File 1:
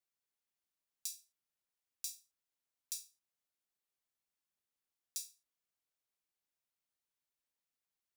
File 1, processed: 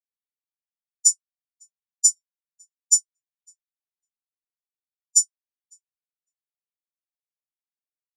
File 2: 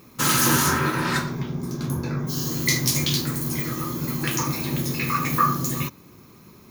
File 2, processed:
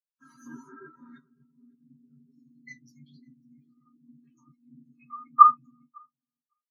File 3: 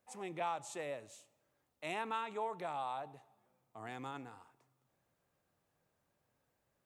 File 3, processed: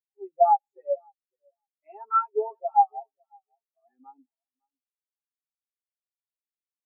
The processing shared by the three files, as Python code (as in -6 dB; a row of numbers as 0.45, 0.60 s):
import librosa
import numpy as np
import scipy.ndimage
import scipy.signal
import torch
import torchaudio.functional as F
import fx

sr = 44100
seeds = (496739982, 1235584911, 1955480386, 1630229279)

y = scipy.signal.sosfilt(scipy.signal.butter(2, 240.0, 'highpass', fs=sr, output='sos'), x)
y = y + 0.71 * np.pad(y, (int(7.4 * sr / 1000.0), 0))[:len(y)]
y = fx.echo_feedback(y, sr, ms=554, feedback_pct=39, wet_db=-9.0)
y = fx.spectral_expand(y, sr, expansion=4.0)
y = y * 10.0 ** (-30 / 20.0) / np.sqrt(np.mean(np.square(y)))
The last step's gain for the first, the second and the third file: +16.0, +3.5, +15.5 dB